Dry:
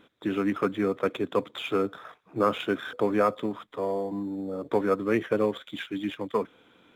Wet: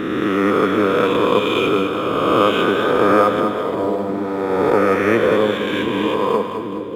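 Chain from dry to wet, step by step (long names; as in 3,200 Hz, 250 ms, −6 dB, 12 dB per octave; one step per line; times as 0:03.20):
peak hold with a rise ahead of every peak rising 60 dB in 2.40 s
echo with a time of its own for lows and highs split 460 Hz, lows 741 ms, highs 208 ms, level −7 dB
0:03.83–0:04.41: windowed peak hold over 3 samples
level +5.5 dB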